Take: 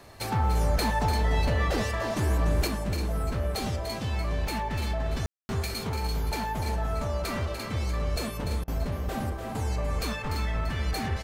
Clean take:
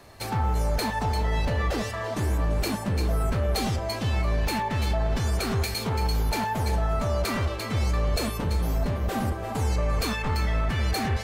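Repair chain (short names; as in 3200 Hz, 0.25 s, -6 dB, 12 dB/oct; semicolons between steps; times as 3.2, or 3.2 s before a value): room tone fill 5.26–5.49; interpolate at 8.64, 37 ms; inverse comb 0.294 s -8 dB; gain 0 dB, from 2.67 s +4.5 dB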